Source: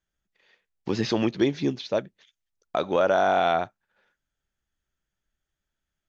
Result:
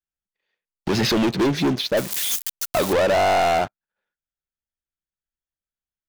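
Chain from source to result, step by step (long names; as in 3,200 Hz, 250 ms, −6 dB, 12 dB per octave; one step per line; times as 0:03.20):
0:01.97–0:02.93: spike at every zero crossing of −19 dBFS
leveller curve on the samples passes 5
level −5.5 dB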